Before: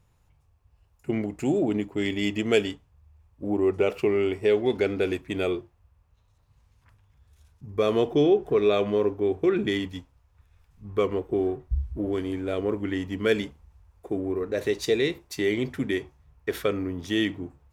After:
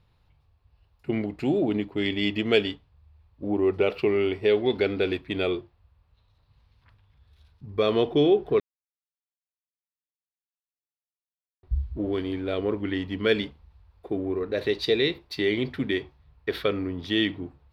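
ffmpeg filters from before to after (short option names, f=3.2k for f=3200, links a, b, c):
-filter_complex "[0:a]asplit=3[a][b][c];[a]atrim=end=8.6,asetpts=PTS-STARTPTS,afade=t=out:st=8.596:d=0.004:c=hsin[d];[b]atrim=start=8.6:end=11.63,asetpts=PTS-STARTPTS,volume=0[e];[c]atrim=start=11.63,asetpts=PTS-STARTPTS,afade=t=in:d=0.004:c=hsin[f];[d][e][f]concat=n=3:v=0:a=1,highshelf=f=5.4k:t=q:w=3:g=-9"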